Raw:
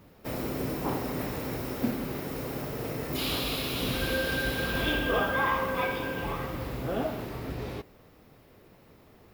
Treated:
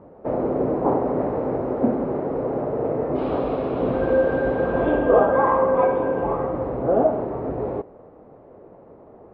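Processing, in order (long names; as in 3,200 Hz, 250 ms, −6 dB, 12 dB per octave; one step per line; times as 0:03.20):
low-pass filter 1,000 Hz 12 dB per octave
parametric band 600 Hz +15 dB 2.7 octaves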